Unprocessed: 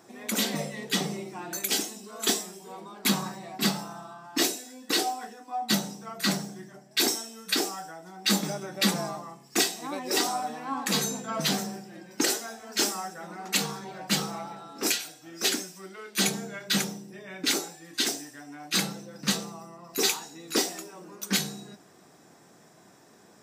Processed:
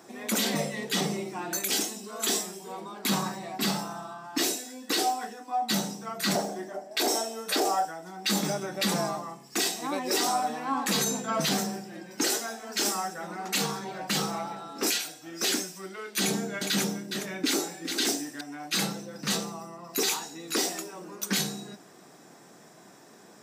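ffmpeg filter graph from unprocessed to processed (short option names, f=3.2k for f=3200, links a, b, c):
-filter_complex "[0:a]asettb=1/sr,asplit=3[a][b][c];[a]atrim=end=6.354[d];[b]atrim=start=6.35:end=7.85,asetpts=PTS-STARTPTS,afade=t=in:d=0.004:c=qsin,afade=t=out:st=1.496:d=0.004:c=qsin,highpass=f=210:w=0.5412,highpass=f=210:w=1.3066,equalizer=f=630:w=1.1:g=13.5[e];[c]atrim=start=7.846[f];[d][e]acrossfade=d=0.004:c1=hsin:c2=qsin[g];[g][f]acrossfade=d=0.004:c1=qsin:c2=hsin,asettb=1/sr,asplit=3[h][i][j];[h]atrim=end=16.204[k];[i]atrim=start=16.2:end=18.41,asetpts=PTS-STARTPTS,afade=t=in:d=0.004:c=qsin,afade=t=out:st=2.206:d=0.004:c=qsin,equalizer=f=290:t=o:w=0.83:g=5,aecho=1:1:412:0.237,atrim=end_sample=97461[l];[j]atrim=start=18.406[m];[k][l]acrossfade=d=0.004:c1=hsin:c2=qsin[n];[n][m]acrossfade=d=0.004:c1=qsin:c2=hsin,highpass=140,alimiter=limit=-20.5dB:level=0:latency=1:release=18,volume=3.5dB"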